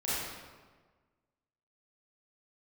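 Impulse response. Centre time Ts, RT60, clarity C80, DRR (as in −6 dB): 115 ms, 1.4 s, −0.5 dB, −11.0 dB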